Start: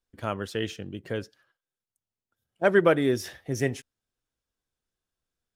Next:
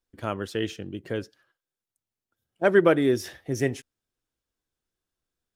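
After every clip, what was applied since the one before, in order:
parametric band 330 Hz +4 dB 0.57 octaves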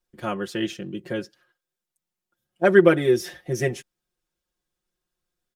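comb filter 5.6 ms, depth 94%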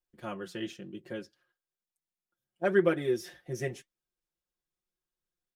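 flanger 0.99 Hz, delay 2.2 ms, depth 6.4 ms, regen −73%
level −6 dB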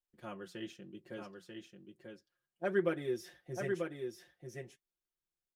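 single-tap delay 940 ms −5 dB
level −7 dB

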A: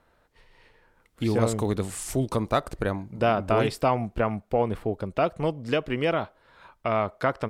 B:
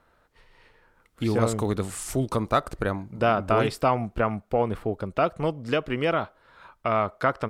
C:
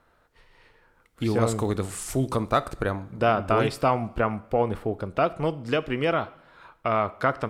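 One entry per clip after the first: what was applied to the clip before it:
parametric band 1,300 Hz +4.5 dB 0.45 octaves
convolution reverb, pre-delay 3 ms, DRR 15 dB

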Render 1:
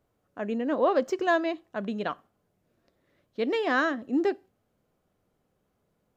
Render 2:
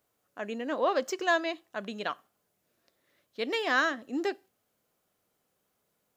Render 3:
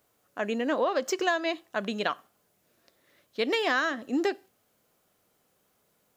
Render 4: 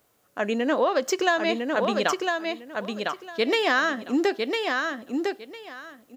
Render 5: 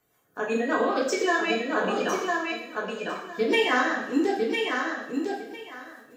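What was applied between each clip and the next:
spectral tilt +3 dB per octave; level −1.5 dB
downward compressor 10 to 1, threshold −29 dBFS, peak gain reduction 9 dB; level +6.5 dB
repeating echo 1,004 ms, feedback 19%, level −4 dB; level +4 dB
spectral magnitudes quantised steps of 30 dB; rotating-speaker cabinet horn 5 Hz; coupled-rooms reverb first 0.75 s, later 2.6 s, from −27 dB, DRR −3.5 dB; level −3 dB

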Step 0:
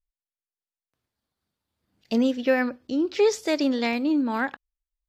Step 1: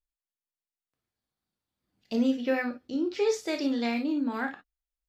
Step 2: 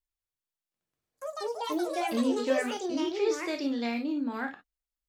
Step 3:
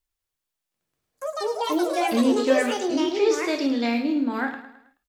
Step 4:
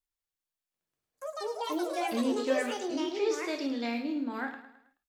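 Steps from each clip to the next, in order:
reverb whose tail is shaped and stops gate 80 ms flat, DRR 3.5 dB; level −7 dB
delay with pitch and tempo change per echo 109 ms, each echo +5 semitones, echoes 3; level −2.5 dB
repeating echo 107 ms, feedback 45%, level −12.5 dB; level +7 dB
low-shelf EQ 220 Hz −3.5 dB; level −8 dB

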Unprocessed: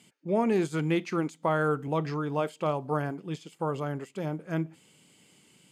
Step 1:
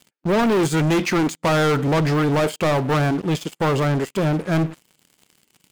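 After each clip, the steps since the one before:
leveller curve on the samples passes 5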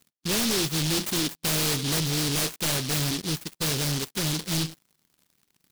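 short delay modulated by noise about 4,100 Hz, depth 0.43 ms
level −7.5 dB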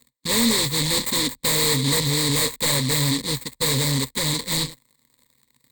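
EQ curve with evenly spaced ripples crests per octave 1, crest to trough 14 dB
level +3 dB

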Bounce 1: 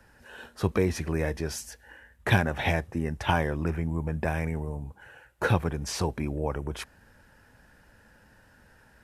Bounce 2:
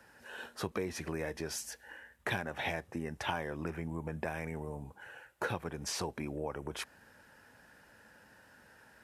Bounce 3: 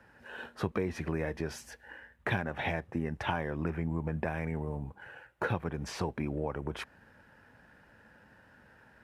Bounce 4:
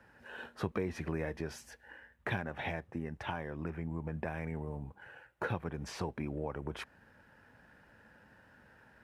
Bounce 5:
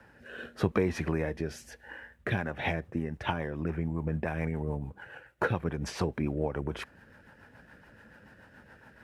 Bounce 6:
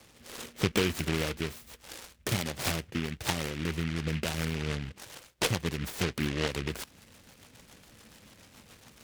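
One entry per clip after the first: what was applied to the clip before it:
high-pass filter 270 Hz 6 dB per octave; downward compressor 2.5 to 1, threshold −36 dBFS, peak gain reduction 11.5 dB
in parallel at −8.5 dB: dead-zone distortion −56 dBFS; on the sum: bass and treble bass +5 dB, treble −12 dB
speech leveller within 5 dB 2 s; level −5 dB
rotating-speaker cabinet horn 0.85 Hz, later 7 Hz, at 0:01.99; level +8.5 dB
short delay modulated by noise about 2,100 Hz, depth 0.24 ms

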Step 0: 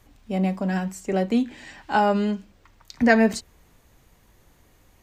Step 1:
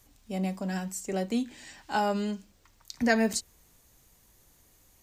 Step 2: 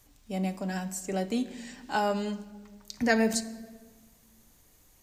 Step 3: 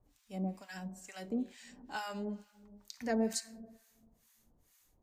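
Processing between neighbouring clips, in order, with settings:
bass and treble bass 0 dB, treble +12 dB; level −7.5 dB
rectangular room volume 1,400 cubic metres, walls mixed, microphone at 0.43 metres
two-band tremolo in antiphase 2.2 Hz, depth 100%, crossover 960 Hz; level −5 dB

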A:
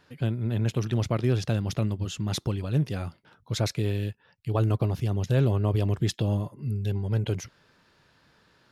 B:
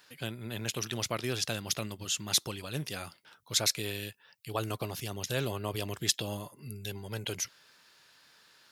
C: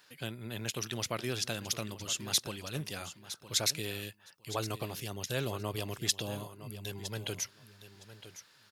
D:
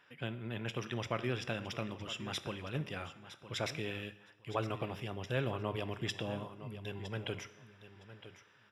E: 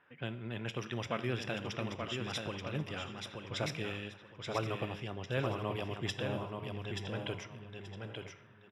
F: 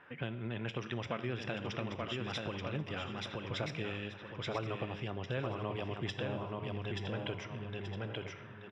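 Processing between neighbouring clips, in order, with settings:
spectral tilt +4 dB per octave; level −2 dB
repeating echo 962 ms, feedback 16%, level −13.5 dB; level −2 dB
Savitzky-Golay smoothing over 25 samples; coupled-rooms reverb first 0.8 s, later 2.2 s, DRR 12 dB
low-pass that shuts in the quiet parts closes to 1,800 Hz, open at −33.5 dBFS; on a send: repeating echo 880 ms, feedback 20%, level −5 dB
Bessel low-pass filter 4,000 Hz, order 2; downward compressor 2.5 to 1, threshold −49 dBFS, peak gain reduction 13.5 dB; level +9.5 dB

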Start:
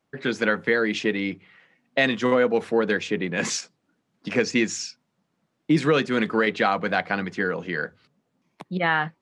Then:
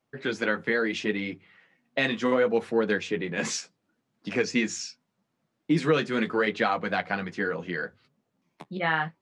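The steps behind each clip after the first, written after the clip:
flanger 0.74 Hz, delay 7.5 ms, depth 6.7 ms, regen −31%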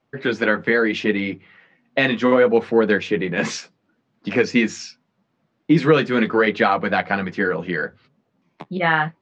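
high-frequency loss of the air 130 metres
level +8.5 dB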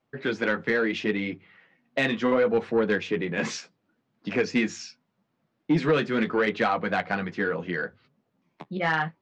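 soft clipping −8 dBFS, distortion −19 dB
level −5.5 dB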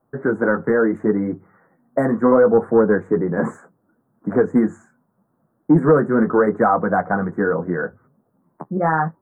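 inverse Chebyshev band-stop filter 2,500–5,700 Hz, stop band 50 dB
level +9 dB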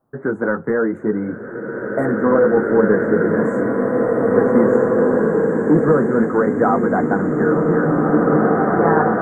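slow-attack reverb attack 2,500 ms, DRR −3 dB
level −1.5 dB

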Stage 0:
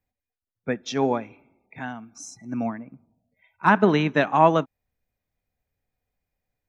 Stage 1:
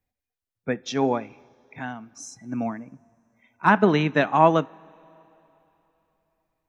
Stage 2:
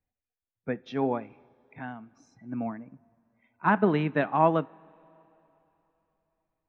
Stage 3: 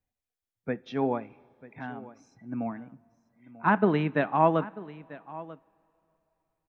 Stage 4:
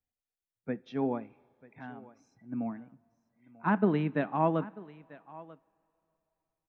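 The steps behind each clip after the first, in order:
coupled-rooms reverb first 0.26 s, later 3.4 s, from −18 dB, DRR 19.5 dB
high-frequency loss of the air 340 metres; level −4 dB
single-tap delay 941 ms −18 dB
dynamic equaliser 220 Hz, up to +6 dB, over −39 dBFS, Q 0.74; level −7 dB

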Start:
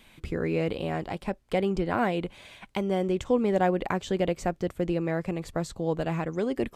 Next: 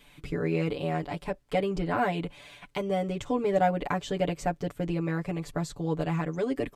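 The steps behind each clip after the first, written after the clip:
comb filter 6.9 ms, depth 99%
level −3.5 dB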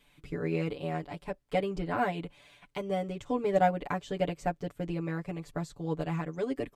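expander for the loud parts 1.5 to 1, over −37 dBFS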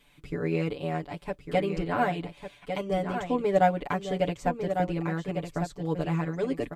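single-tap delay 1,151 ms −7.5 dB
level +3 dB

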